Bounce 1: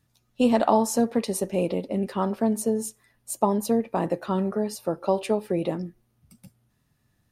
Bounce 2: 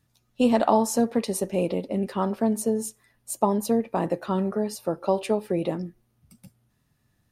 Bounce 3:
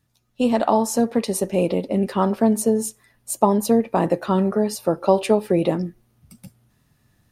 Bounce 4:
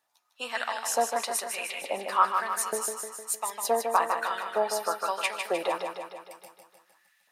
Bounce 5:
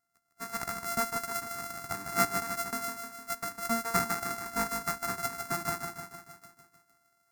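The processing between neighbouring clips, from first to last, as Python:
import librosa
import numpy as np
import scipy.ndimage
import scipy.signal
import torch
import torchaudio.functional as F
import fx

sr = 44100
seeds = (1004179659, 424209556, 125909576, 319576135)

y1 = x
y2 = fx.rider(y1, sr, range_db=10, speed_s=2.0)
y2 = y2 * 10.0 ** (5.0 / 20.0)
y3 = fx.filter_lfo_highpass(y2, sr, shape='saw_up', hz=1.1, low_hz=710.0, high_hz=2500.0, q=3.1)
y3 = fx.echo_feedback(y3, sr, ms=153, feedback_pct=59, wet_db=-6.0)
y3 = y3 * 10.0 ** (-3.0 / 20.0)
y4 = np.r_[np.sort(y3[:len(y3) // 64 * 64].reshape(-1, 64), axis=1).ravel(), y3[len(y3) // 64 * 64:]]
y4 = fx.fixed_phaser(y4, sr, hz=1300.0, stages=4)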